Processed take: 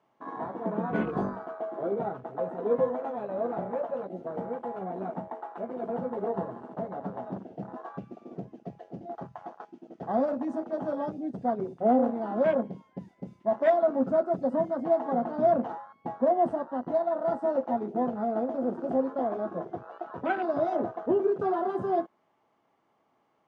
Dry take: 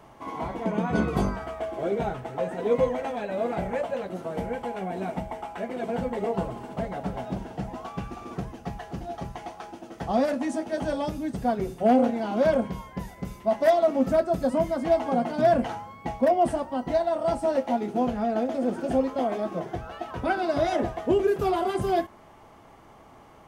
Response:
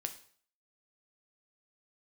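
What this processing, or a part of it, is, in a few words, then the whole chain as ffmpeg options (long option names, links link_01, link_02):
over-cleaned archive recording: -af "highpass=180,lowpass=5600,afwtdn=0.0224,volume=-2.5dB"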